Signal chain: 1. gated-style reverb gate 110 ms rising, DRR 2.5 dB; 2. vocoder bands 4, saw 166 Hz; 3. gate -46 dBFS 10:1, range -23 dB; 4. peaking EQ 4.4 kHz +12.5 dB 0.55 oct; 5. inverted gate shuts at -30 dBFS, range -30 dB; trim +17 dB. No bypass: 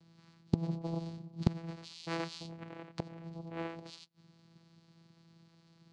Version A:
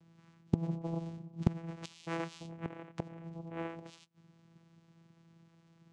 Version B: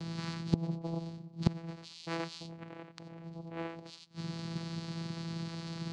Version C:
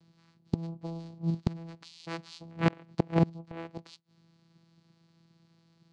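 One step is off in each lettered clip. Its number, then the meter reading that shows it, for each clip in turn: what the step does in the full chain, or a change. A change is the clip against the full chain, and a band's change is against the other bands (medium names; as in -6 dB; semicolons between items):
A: 4, 4 kHz band -6.0 dB; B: 3, crest factor change -2.0 dB; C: 1, momentary loudness spread change +5 LU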